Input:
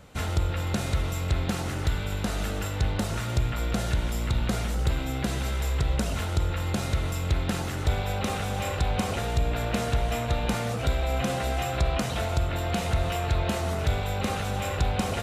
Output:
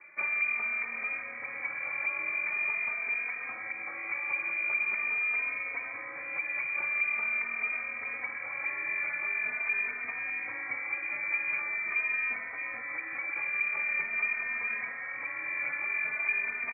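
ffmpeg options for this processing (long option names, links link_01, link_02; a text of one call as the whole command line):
ffmpeg -i in.wav -filter_complex "[0:a]acrossover=split=170|370[link_01][link_02][link_03];[link_01]acompressor=threshold=-28dB:ratio=4[link_04];[link_02]acompressor=threshold=-43dB:ratio=4[link_05];[link_03]acompressor=threshold=-35dB:ratio=4[link_06];[link_04][link_05][link_06]amix=inputs=3:normalize=0,lowpass=frequency=2300:width_type=q:width=0.5098,lowpass=frequency=2300:width_type=q:width=0.6013,lowpass=frequency=2300:width_type=q:width=0.9,lowpass=frequency=2300:width_type=q:width=2.563,afreqshift=-2700,highpass=110,asetrate=40131,aresample=44100,bandreject=frequency=60:width_type=h:width=6,bandreject=frequency=120:width_type=h:width=6,bandreject=frequency=180:width_type=h:width=6,asplit=2[link_07][link_08];[link_08]adelay=3,afreqshift=0.44[link_09];[link_07][link_09]amix=inputs=2:normalize=1" out.wav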